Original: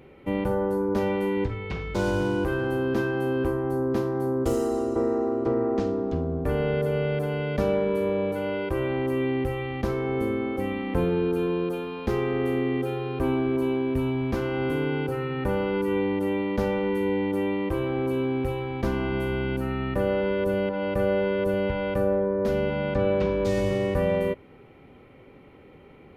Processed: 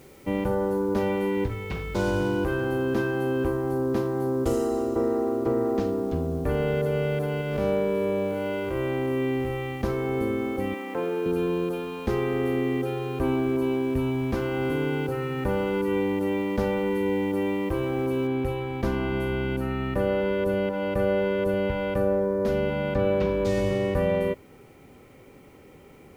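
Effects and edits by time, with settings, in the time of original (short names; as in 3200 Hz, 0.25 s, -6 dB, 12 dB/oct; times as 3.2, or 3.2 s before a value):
7.41–9.81 time blur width 0.123 s
10.74–11.26 BPF 370–3100 Hz
18.27 noise floor step -59 dB -67 dB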